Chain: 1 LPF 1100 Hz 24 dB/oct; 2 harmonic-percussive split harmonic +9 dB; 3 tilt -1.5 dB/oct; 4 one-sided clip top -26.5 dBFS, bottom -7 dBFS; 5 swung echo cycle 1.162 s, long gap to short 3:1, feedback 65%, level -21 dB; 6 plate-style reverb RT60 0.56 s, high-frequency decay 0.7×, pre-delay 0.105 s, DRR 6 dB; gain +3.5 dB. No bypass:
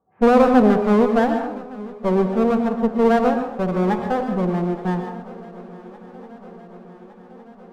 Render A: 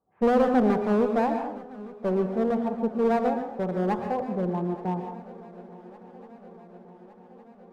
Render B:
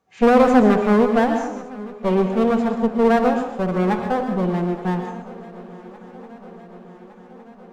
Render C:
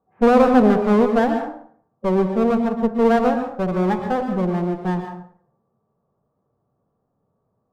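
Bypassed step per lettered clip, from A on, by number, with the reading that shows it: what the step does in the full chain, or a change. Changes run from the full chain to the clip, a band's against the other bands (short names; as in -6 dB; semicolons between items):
2, 2 kHz band -2.0 dB; 1, 2 kHz band +2.0 dB; 5, momentary loudness spread change -7 LU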